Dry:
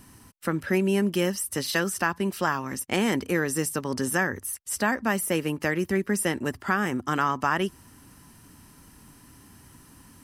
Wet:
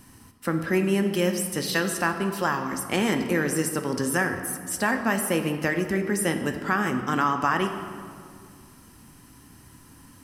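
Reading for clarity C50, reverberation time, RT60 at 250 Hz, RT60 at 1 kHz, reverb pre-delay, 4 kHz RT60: 7.5 dB, 2.1 s, 2.5 s, 2.1 s, 4 ms, 1.4 s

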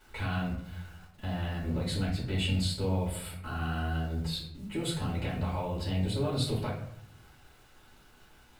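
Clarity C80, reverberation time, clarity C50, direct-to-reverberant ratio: 8.5 dB, 0.75 s, 4.5 dB, -7.0 dB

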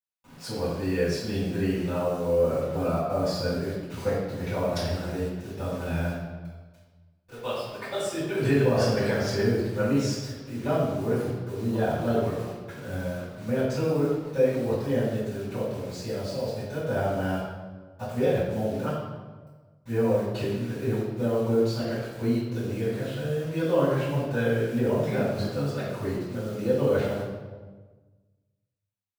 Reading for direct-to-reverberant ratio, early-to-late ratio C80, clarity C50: -12.0 dB, 2.5 dB, 0.0 dB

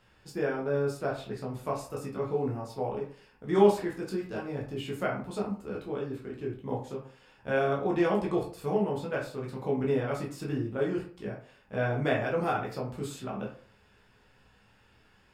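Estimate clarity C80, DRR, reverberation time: 12.0 dB, -3.5 dB, 0.50 s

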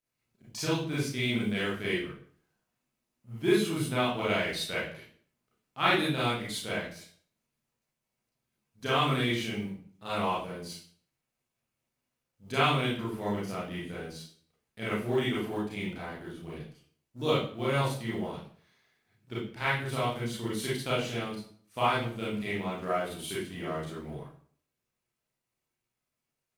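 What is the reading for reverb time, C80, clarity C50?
0.50 s, 7.5 dB, 1.0 dB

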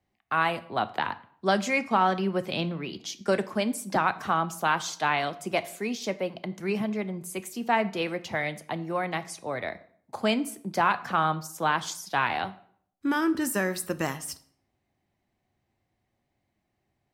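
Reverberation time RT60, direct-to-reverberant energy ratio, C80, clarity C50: 0.60 s, 12.0 dB, 20.5 dB, 17.0 dB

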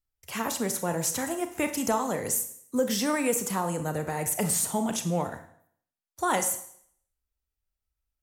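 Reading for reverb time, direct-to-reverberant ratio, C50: 0.65 s, 7.5 dB, 11.0 dB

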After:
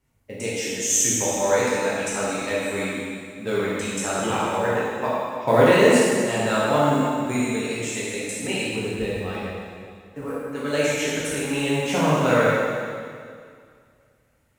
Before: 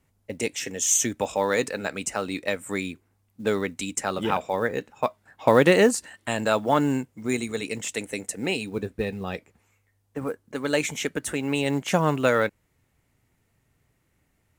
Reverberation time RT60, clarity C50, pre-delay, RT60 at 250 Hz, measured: 2.2 s, -3.5 dB, 5 ms, 2.2 s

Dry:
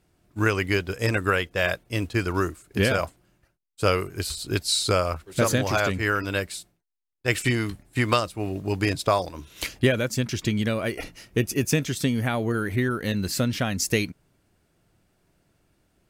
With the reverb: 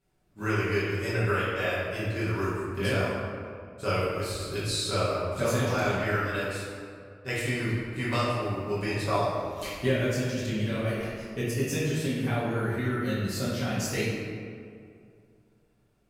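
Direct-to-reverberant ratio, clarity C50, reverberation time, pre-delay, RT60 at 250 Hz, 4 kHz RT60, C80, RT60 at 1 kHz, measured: -10.5 dB, -2.0 dB, 2.3 s, 5 ms, 2.5 s, 1.2 s, 0.5 dB, 2.2 s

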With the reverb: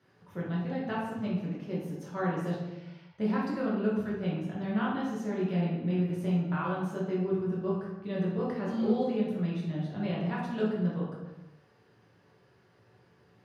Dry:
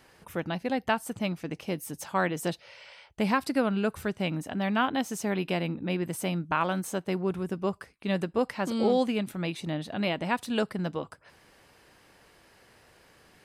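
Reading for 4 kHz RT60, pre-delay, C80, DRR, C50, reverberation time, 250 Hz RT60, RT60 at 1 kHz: 0.80 s, 3 ms, 4.0 dB, -6.5 dB, 1.0 dB, 1.0 s, n/a, 0.90 s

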